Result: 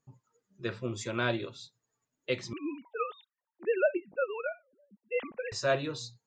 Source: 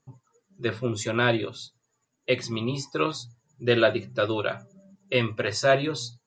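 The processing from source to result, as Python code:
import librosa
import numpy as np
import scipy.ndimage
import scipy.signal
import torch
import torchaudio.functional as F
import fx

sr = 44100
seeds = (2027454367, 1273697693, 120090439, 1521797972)

y = fx.sine_speech(x, sr, at=(2.53, 5.52))
y = y * 10.0 ** (-7.5 / 20.0)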